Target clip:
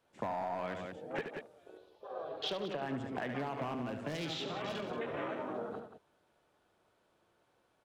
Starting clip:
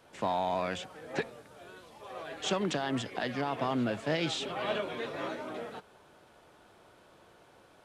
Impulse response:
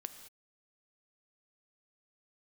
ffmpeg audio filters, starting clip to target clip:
-filter_complex "[0:a]afwtdn=0.00891,asettb=1/sr,asplit=3[link_01][link_02][link_03];[link_01]atrim=end=1.774[link_04];[link_02]atrim=start=1.77:end=2.82,asetpts=PTS-STARTPTS,afade=type=in:duration=0.004:curve=qsin,afade=type=out:start_time=1.046:duration=0.004:curve=qsin,equalizer=frequency=125:width_type=o:width=1:gain=-3,equalizer=frequency=250:width_type=o:width=1:gain=-9,equalizer=frequency=500:width_type=o:width=1:gain=4,equalizer=frequency=1000:width_type=o:width=1:gain=-3,equalizer=frequency=2000:width_type=o:width=1:gain=-7,equalizer=frequency=4000:width_type=o:width=1:gain=7,equalizer=frequency=8000:width_type=o:width=1:gain=-12[link_05];[link_03]atrim=start=2.816[link_06];[link_04][link_05]acrossfade=duration=0.004:curve1=hsin:curve2=qsin[link_07];[link_07][link_06]acrossfade=duration=0.004:curve1=qsin:curve2=hsin,asoftclip=type=hard:threshold=-25.5dB,asettb=1/sr,asplit=3[link_08][link_09][link_10];[link_08]atrim=end=3.744[link_11];[link_09]atrim=start=3.74:end=4.91,asetpts=PTS-STARTPTS,afade=type=in:duration=0.004:curve=qsin,afade=type=out:start_time=1.166:duration=0.004:curve=qsin,acrossover=split=270|3500[link_12][link_13][link_14];[link_12]acompressor=threshold=-41dB:ratio=4[link_15];[link_13]acompressor=threshold=-40dB:ratio=4[link_16];[link_14]acompressor=threshold=-45dB:ratio=4[link_17];[link_15][link_16][link_17]amix=inputs=3:normalize=0[link_18];[link_10]atrim=start=4.906[link_19];[link_11][link_18]acrossfade=duration=0.004:curve1=hsin:curve2=qsin[link_20];[link_20][link_19]acrossfade=duration=0.004:curve1=qsin:curve2=hsin,aecho=1:1:72.89|180.8:0.355|0.282,acompressor=threshold=-36dB:ratio=6,volume=1.5dB"

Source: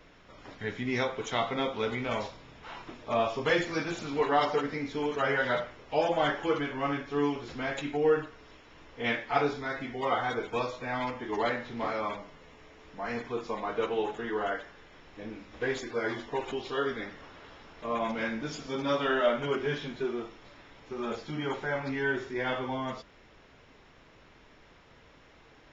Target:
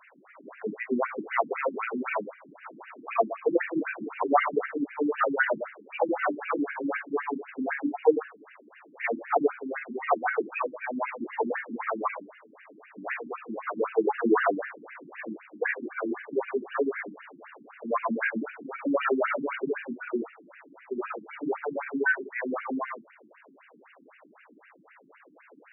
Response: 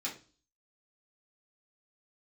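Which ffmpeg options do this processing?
-filter_complex "[0:a]asettb=1/sr,asplit=3[link_01][link_02][link_03];[link_01]atrim=end=14.074[link_04];[link_02]atrim=start=14.07:end=15.25,asetpts=PTS-STARTPTS,afade=type=in:duration=0.004:curve=qsin,afade=type=out:start_time=1.176:duration=0.004:curve=qsin,acontrast=77[link_05];[link_03]atrim=start=15.246[link_06];[link_04][link_05]acrossfade=duration=0.004:curve1=hsin:curve2=qsin[link_07];[link_07][link_06]acrossfade=duration=0.004:curve1=qsin:curve2=hsin,afftfilt=real='re*between(b*sr/1024,240*pow(2100/240,0.5+0.5*sin(2*PI*3.9*pts/sr))/1.41,240*pow(2100/240,0.5+0.5*sin(2*PI*3.9*pts/sr))*1.41)':imag='im*between(b*sr/1024,240*pow(2100/240,0.5+0.5*sin(2*PI*3.9*pts/sr))/1.41,240*pow(2100/240,0.5+0.5*sin(2*PI*3.9*pts/sr))*1.41)':win_size=1024:overlap=0.75,volume=8.5dB"

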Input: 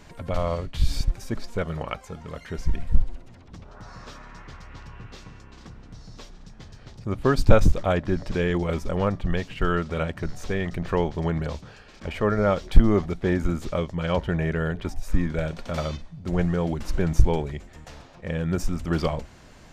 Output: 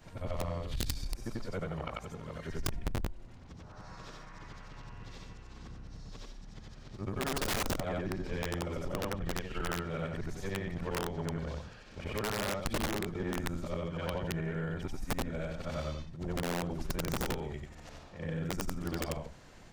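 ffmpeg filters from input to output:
ffmpeg -i in.wav -af "afftfilt=real='re':imag='-im':win_size=8192:overlap=0.75,aeval=exprs='0.447*(cos(1*acos(clip(val(0)/0.447,-1,1)))-cos(1*PI/2))+0.126*(cos(6*acos(clip(val(0)/0.447,-1,1)))-cos(6*PI/2))+0.0501*(cos(8*acos(clip(val(0)/0.447,-1,1)))-cos(8*PI/2))':channel_layout=same,aeval=exprs='(mod(7.94*val(0)+1,2)-1)/7.94':channel_layout=same,acompressor=threshold=-33dB:ratio=2.5,volume=-1dB" out.wav

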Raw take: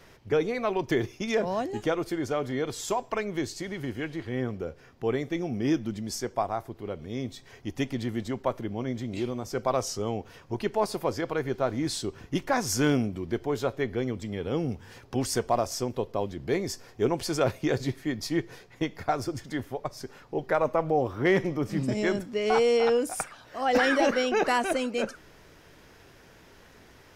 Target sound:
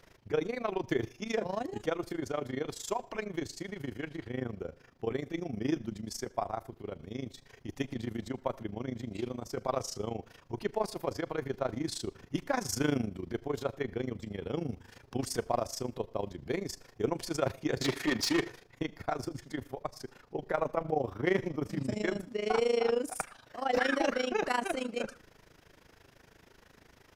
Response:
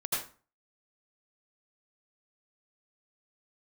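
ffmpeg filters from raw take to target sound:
-filter_complex "[0:a]tremolo=f=26:d=0.857,asettb=1/sr,asplit=3[link_01][link_02][link_03];[link_01]atrim=end=17.814[link_04];[link_02]atrim=start=17.81:end=18.5,asetpts=PTS-STARTPTS,afade=type=in:duration=0.004:curve=qsin,afade=type=out:start_time=0.686:duration=0.004:curve=qsin,asplit=2[link_05][link_06];[link_06]highpass=frequency=720:poles=1,volume=26dB,asoftclip=type=tanh:threshold=-17dB[link_07];[link_05][link_07]amix=inputs=2:normalize=0,lowpass=frequency=5500:poles=1,volume=-6dB[link_08];[link_03]atrim=start=18.496[link_09];[link_04][link_08]acrossfade=duration=0.004:curve1=hsin:curve2=qsin[link_10];[link_10][link_09]acrossfade=duration=0.004:curve1=qsin:curve2=hsin,asplit=2[link_11][link_12];[1:a]atrim=start_sample=2205[link_13];[link_12][link_13]afir=irnorm=-1:irlink=0,volume=-29.5dB[link_14];[link_11][link_14]amix=inputs=2:normalize=0,volume=-2.5dB"

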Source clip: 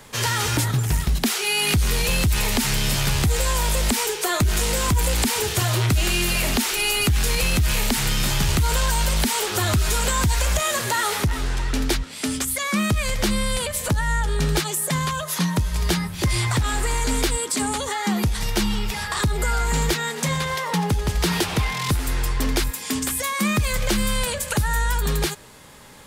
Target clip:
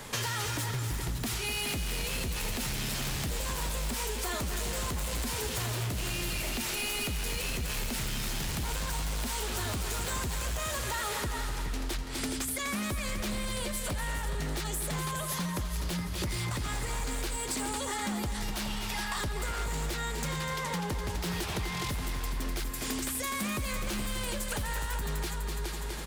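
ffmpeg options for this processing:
ffmpeg -i in.wav -filter_complex "[0:a]asplit=2[link_01][link_02];[link_02]aecho=0:1:418:0.355[link_03];[link_01][link_03]amix=inputs=2:normalize=0,aeval=exprs='0.133*(abs(mod(val(0)/0.133+3,4)-2)-1)':channel_layout=same,asettb=1/sr,asplit=3[link_04][link_05][link_06];[link_04]atrim=end=18.534[link_07];[link_05]atrim=start=18.53:end=19.16,asetpts=PTS-STARTPTS,afade=type=in:duration=0.004:curve=qsin,afade=type=out:start_time=0.626:duration=0.004:curve=qsin,lowshelf=frequency=570:width_type=q:width=1.5:gain=-6[link_08];[link_06]atrim=start=19.156[link_09];[link_07][link_08]acrossfade=duration=0.004:curve1=hsin:curve2=qsin[link_10];[link_10][link_09]acrossfade=duration=0.004:curve1=qsin:curve2=hsin,asplit=2[link_11][link_12];[link_12]aecho=0:1:249|498|747|996|1245:0.355|0.153|0.0656|0.0282|0.0121[link_13];[link_11][link_13]amix=inputs=2:normalize=0,acompressor=threshold=-33dB:ratio=8,volume=2dB" out.wav

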